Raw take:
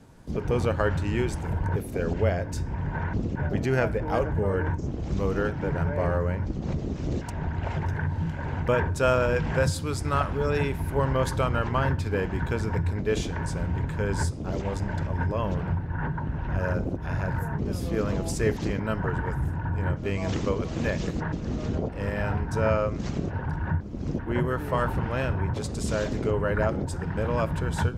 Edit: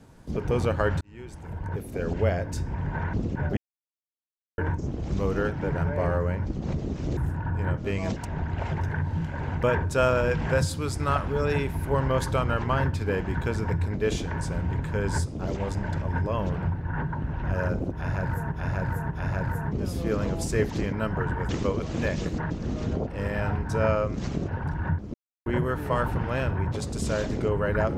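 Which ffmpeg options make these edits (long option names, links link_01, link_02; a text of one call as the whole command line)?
ffmpeg -i in.wav -filter_complex "[0:a]asplit=11[link_01][link_02][link_03][link_04][link_05][link_06][link_07][link_08][link_09][link_10][link_11];[link_01]atrim=end=1.01,asetpts=PTS-STARTPTS,afade=type=out:start_time=1.006:duration=0.004:curve=hsin[link_12];[link_02]atrim=start=1.01:end=3.57,asetpts=PTS-STARTPTS,afade=type=in:duration=1.25,afade=type=out:start_time=2.556:duration=0.004:curve=hsin[link_13];[link_03]atrim=start=3.57:end=4.58,asetpts=PTS-STARTPTS,volume=0[link_14];[link_04]atrim=start=4.58:end=7.172,asetpts=PTS-STARTPTS,afade=type=in:duration=0.004:curve=hsin[link_15];[link_05]atrim=start=19.358:end=20.312[link_16];[link_06]atrim=start=7.168:end=17.572[link_17];[link_07]atrim=start=16.978:end=17.572[link_18];[link_08]atrim=start=16.978:end=19.362[link_19];[link_09]atrim=start=20.308:end=23.96,asetpts=PTS-STARTPTS,afade=type=out:start_time=3.648:duration=0.004:curve=hsin[link_20];[link_10]atrim=start=23.96:end=24.28,asetpts=PTS-STARTPTS,volume=0[link_21];[link_11]atrim=start=24.28,asetpts=PTS-STARTPTS,afade=type=in:duration=0.004:curve=hsin[link_22];[link_12][link_13][link_14][link_15]concat=n=4:v=0:a=1[link_23];[link_23][link_16]acrossfade=duration=0.004:curve1=hsin:curve2=hsin[link_24];[link_24][link_17]acrossfade=duration=0.004:curve1=hsin:curve2=hsin[link_25];[link_25][link_18]acrossfade=duration=0.004:curve1=hsin:curve2=hsin[link_26];[link_26][link_19]acrossfade=duration=0.004:curve1=hsin:curve2=hsin[link_27];[link_20][link_21][link_22]concat=n=3:v=0:a=1[link_28];[link_27][link_28]acrossfade=duration=0.004:curve1=hsin:curve2=hsin" out.wav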